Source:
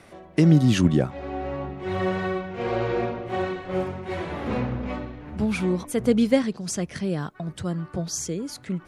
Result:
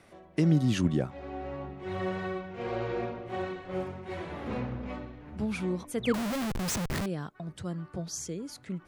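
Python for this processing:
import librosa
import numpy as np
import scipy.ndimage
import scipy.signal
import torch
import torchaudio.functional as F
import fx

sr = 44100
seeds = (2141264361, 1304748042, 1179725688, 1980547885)

y = fx.spec_paint(x, sr, seeds[0], shape='fall', start_s=6.03, length_s=0.21, low_hz=250.0, high_hz=4100.0, level_db=-29.0)
y = fx.schmitt(y, sr, flips_db=-37.0, at=(6.14, 7.06))
y = F.gain(torch.from_numpy(y), -7.5).numpy()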